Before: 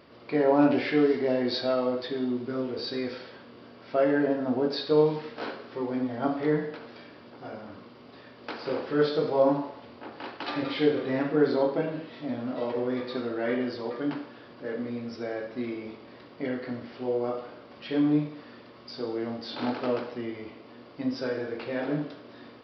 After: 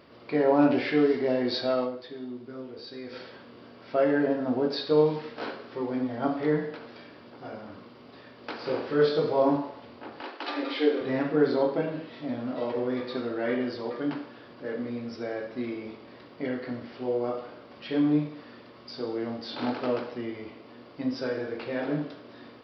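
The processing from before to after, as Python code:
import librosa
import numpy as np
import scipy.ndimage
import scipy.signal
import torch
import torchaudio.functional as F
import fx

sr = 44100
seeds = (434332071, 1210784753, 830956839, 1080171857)

y = fx.doubler(x, sr, ms=25.0, db=-6.0, at=(8.58, 9.56))
y = fx.steep_highpass(y, sr, hz=260.0, slope=36, at=(10.21, 11.01))
y = fx.edit(y, sr, fx.fade_down_up(start_s=1.84, length_s=1.32, db=-9.0, fade_s=0.41, curve='exp'), tone=tone)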